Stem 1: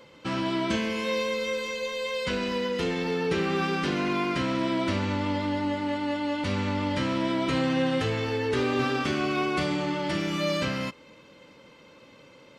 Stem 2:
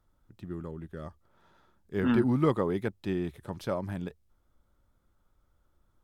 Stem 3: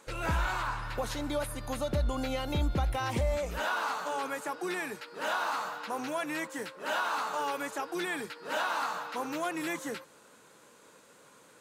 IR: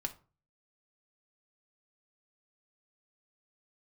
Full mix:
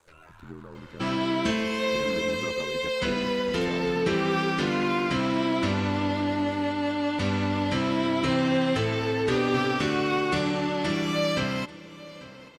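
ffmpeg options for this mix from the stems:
-filter_complex "[0:a]adelay=750,volume=1.5dB,asplit=2[link_01][link_02];[link_02]volume=-18.5dB[link_03];[1:a]volume=-0.5dB,asplit=2[link_04][link_05];[2:a]alimiter=level_in=5.5dB:limit=-24dB:level=0:latency=1,volume=-5.5dB,acrossover=split=950|2200[link_06][link_07][link_08];[link_06]acompressor=threshold=-47dB:ratio=4[link_09];[link_07]acompressor=threshold=-45dB:ratio=4[link_10];[link_08]acompressor=threshold=-57dB:ratio=4[link_11];[link_09][link_10][link_11]amix=inputs=3:normalize=0,volume=-5.5dB[link_12];[link_05]apad=whole_len=511900[link_13];[link_12][link_13]sidechaincompress=threshold=-33dB:ratio=8:attack=11:release=179[link_14];[link_04][link_14]amix=inputs=2:normalize=0,aeval=exprs='val(0)*sin(2*PI*41*n/s)':channel_layout=same,acompressor=threshold=-36dB:ratio=2.5,volume=0dB[link_15];[link_03]aecho=0:1:840:1[link_16];[link_01][link_15][link_16]amix=inputs=3:normalize=0"

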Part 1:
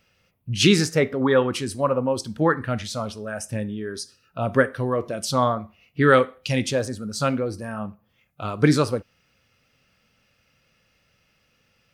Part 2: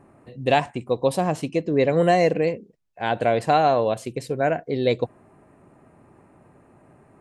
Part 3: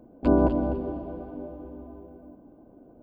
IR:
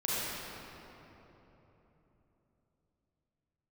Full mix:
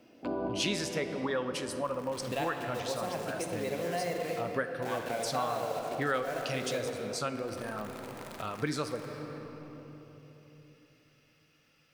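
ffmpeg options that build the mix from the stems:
-filter_complex "[0:a]volume=-3dB,asplit=2[link_01][link_02];[link_02]volume=-17.5dB[link_03];[1:a]acompressor=mode=upward:threshold=-21dB:ratio=2.5,acrusher=bits=6:dc=4:mix=0:aa=0.000001,adelay=1850,volume=-10dB,asplit=2[link_04][link_05];[link_05]volume=-6dB[link_06];[2:a]highpass=frequency=97:width=0.5412,highpass=frequency=97:width=1.3066,volume=-7dB,asplit=2[link_07][link_08];[link_08]volume=-4dB[link_09];[3:a]atrim=start_sample=2205[link_10];[link_03][link_06][link_09]amix=inputs=3:normalize=0[link_11];[link_11][link_10]afir=irnorm=-1:irlink=0[link_12];[link_01][link_04][link_07][link_12]amix=inputs=4:normalize=0,lowshelf=frequency=400:gain=-8.5,acompressor=threshold=-36dB:ratio=2"

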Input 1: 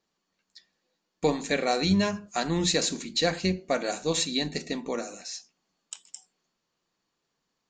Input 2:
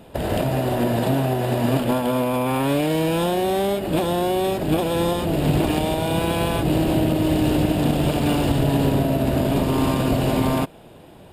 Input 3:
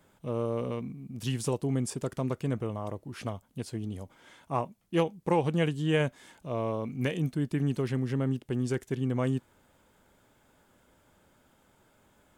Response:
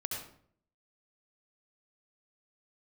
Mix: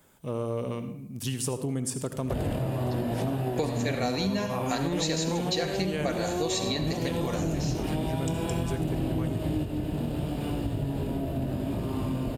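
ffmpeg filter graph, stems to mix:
-filter_complex "[0:a]adelay=2350,volume=2.5dB,asplit=2[link_01][link_02];[link_02]volume=-5dB[link_03];[1:a]lowshelf=frequency=310:gain=8.5,flanger=delay=17.5:depth=7.7:speed=0.83,adelay=2150,volume=-4.5dB,asplit=2[link_04][link_05];[link_05]volume=-13.5dB[link_06];[2:a]highshelf=frequency=6500:gain=10.5,volume=-1.5dB,asplit=3[link_07][link_08][link_09];[link_08]volume=-7.5dB[link_10];[link_09]apad=whole_len=594375[link_11];[link_04][link_11]sidechaingate=range=-10dB:threshold=-60dB:ratio=16:detection=peak[link_12];[3:a]atrim=start_sample=2205[link_13];[link_03][link_06][link_10]amix=inputs=3:normalize=0[link_14];[link_14][link_13]afir=irnorm=-1:irlink=0[link_15];[link_01][link_12][link_07][link_15]amix=inputs=4:normalize=0,acompressor=threshold=-26dB:ratio=5"

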